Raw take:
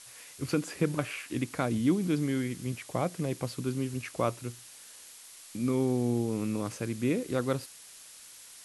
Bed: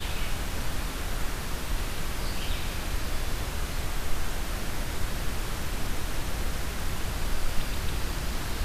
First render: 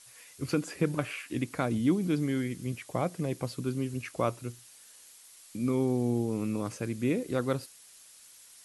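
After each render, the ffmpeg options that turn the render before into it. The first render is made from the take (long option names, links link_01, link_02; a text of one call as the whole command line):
ffmpeg -i in.wav -af "afftdn=noise_reduction=6:noise_floor=-51" out.wav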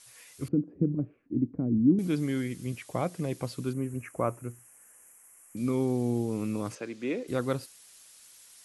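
ffmpeg -i in.wav -filter_complex "[0:a]asettb=1/sr,asplit=3[link_01][link_02][link_03];[link_01]atrim=end=0.484[link_04];[link_02]atrim=start=0.48:end=1.99,asetpts=PTS-STARTPTS,afade=type=in:duration=0.004:curve=qsin,afade=type=out:start_time=1.506:duration=0.004:curve=qsin,lowpass=frequency=270:width_type=q:width=1.9[link_05];[link_03]atrim=start=1.986[link_06];[link_04][link_05]acrossfade=duration=0.004:curve1=hsin:curve2=qsin[link_07];[link_07][link_06]acrossfade=duration=0.004:curve1=qsin:curve2=hsin,asettb=1/sr,asplit=3[link_08][link_09][link_10];[link_08]atrim=end=3.734[link_11];[link_09]atrim=start=3.73:end=5.57,asetpts=PTS-STARTPTS,afade=type=in:duration=0.004:curve=qsin,afade=type=out:start_time=1.836:duration=0.004:curve=qsin,asuperstop=centerf=4100:order=4:qfactor=0.73[link_12];[link_10]atrim=start=5.566[link_13];[link_11][link_12]acrossfade=duration=0.004:curve1=hsin:curve2=qsin[link_14];[link_14][link_13]acrossfade=duration=0.004:curve1=qsin:curve2=hsin,asettb=1/sr,asplit=3[link_15][link_16][link_17];[link_15]atrim=end=6.754[link_18];[link_16]atrim=start=6.75:end=7.28,asetpts=PTS-STARTPTS,afade=type=in:duration=0.004:curve=qsin,afade=type=out:start_time=0.526:duration=0.004:curve=qsin,acrossover=split=250 6500:gain=0.0891 1 0.0631[link_19][link_20][link_21];[link_19][link_20][link_21]amix=inputs=3:normalize=0[link_22];[link_17]atrim=start=7.276[link_23];[link_18][link_22]acrossfade=duration=0.004:curve1=hsin:curve2=qsin[link_24];[link_24][link_23]acrossfade=duration=0.004:curve1=qsin:curve2=hsin" out.wav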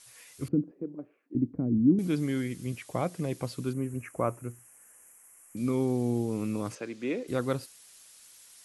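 ffmpeg -i in.wav -filter_complex "[0:a]asettb=1/sr,asplit=3[link_01][link_02][link_03];[link_01]atrim=end=0.714[link_04];[link_02]atrim=start=0.71:end=1.35,asetpts=PTS-STARTPTS,afade=type=in:duration=0.004:curve=qsin,afade=type=out:start_time=0.636:duration=0.004:curve=qsin,highpass=490[link_05];[link_03]atrim=start=1.346[link_06];[link_04][link_05]acrossfade=duration=0.004:curve1=hsin:curve2=qsin[link_07];[link_07][link_06]acrossfade=duration=0.004:curve1=qsin:curve2=hsin" out.wav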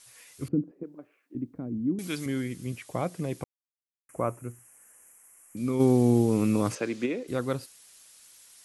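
ffmpeg -i in.wav -filter_complex "[0:a]asettb=1/sr,asplit=3[link_01][link_02][link_03];[link_01]atrim=end=0.834[link_04];[link_02]atrim=start=0.83:end=2.26,asetpts=PTS-STARTPTS,afade=type=in:duration=0.004:curve=qsin,afade=type=out:start_time=1.426:duration=0.004:curve=qsin,tiltshelf=frequency=830:gain=-8[link_05];[link_03]atrim=start=2.256[link_06];[link_04][link_05]acrossfade=duration=0.004:curve1=hsin:curve2=qsin[link_07];[link_07][link_06]acrossfade=duration=0.004:curve1=qsin:curve2=hsin,asplit=3[link_08][link_09][link_10];[link_08]afade=type=out:start_time=5.79:duration=0.02[link_11];[link_09]acontrast=90,afade=type=in:start_time=5.79:duration=0.02,afade=type=out:start_time=7.05:duration=0.02[link_12];[link_10]afade=type=in:start_time=7.05:duration=0.02[link_13];[link_11][link_12][link_13]amix=inputs=3:normalize=0,asplit=3[link_14][link_15][link_16];[link_14]atrim=end=3.44,asetpts=PTS-STARTPTS,afade=type=out:start_time=3.436:duration=0.004:curve=hsin[link_17];[link_15]atrim=start=3.44:end=4.09,asetpts=PTS-STARTPTS,volume=0[link_18];[link_16]atrim=start=4.09,asetpts=PTS-STARTPTS,afade=type=in:duration=0.004:curve=hsin[link_19];[link_17][link_18][link_19]concat=n=3:v=0:a=1" out.wav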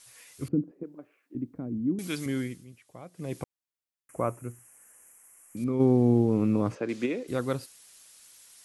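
ffmpeg -i in.wav -filter_complex "[0:a]asettb=1/sr,asplit=3[link_01][link_02][link_03];[link_01]atrim=end=5.644[link_04];[link_02]atrim=start=5.64:end=6.89,asetpts=PTS-STARTPTS,afade=type=in:duration=0.004:curve=qsin,afade=type=out:start_time=1.246:duration=0.004:curve=qsin,lowpass=frequency=1100:poles=1[link_05];[link_03]atrim=start=6.886[link_06];[link_04][link_05]acrossfade=duration=0.004:curve1=hsin:curve2=qsin[link_07];[link_07][link_06]acrossfade=duration=0.004:curve1=qsin:curve2=hsin,asplit=3[link_08][link_09][link_10];[link_08]atrim=end=2.66,asetpts=PTS-STARTPTS,afade=type=out:start_time=2.43:duration=0.23:silence=0.16788[link_11];[link_09]atrim=start=2.66:end=3.13,asetpts=PTS-STARTPTS,volume=-15.5dB[link_12];[link_10]atrim=start=3.13,asetpts=PTS-STARTPTS,afade=type=in:duration=0.23:silence=0.16788[link_13];[link_11][link_12][link_13]concat=n=3:v=0:a=1" out.wav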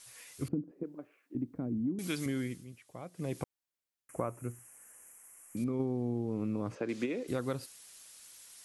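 ffmpeg -i in.wav -af "acompressor=threshold=-30dB:ratio=8" out.wav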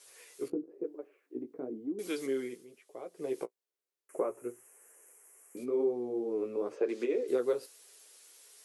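ffmpeg -i in.wav -af "highpass=frequency=410:width_type=q:width=4.9,flanger=delay=9:depth=8:regen=-18:speed=1:shape=sinusoidal" out.wav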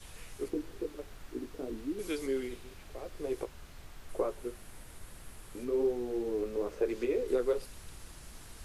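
ffmpeg -i in.wav -i bed.wav -filter_complex "[1:a]volume=-19.5dB[link_01];[0:a][link_01]amix=inputs=2:normalize=0" out.wav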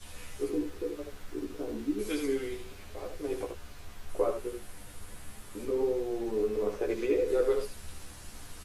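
ffmpeg -i in.wav -filter_complex "[0:a]asplit=2[link_01][link_02];[link_02]adelay=14,volume=-5dB[link_03];[link_01][link_03]amix=inputs=2:normalize=0,asplit=2[link_04][link_05];[link_05]aecho=0:1:10|77:0.631|0.531[link_06];[link_04][link_06]amix=inputs=2:normalize=0" out.wav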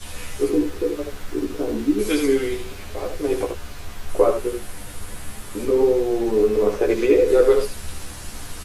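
ffmpeg -i in.wav -af "volume=12dB" out.wav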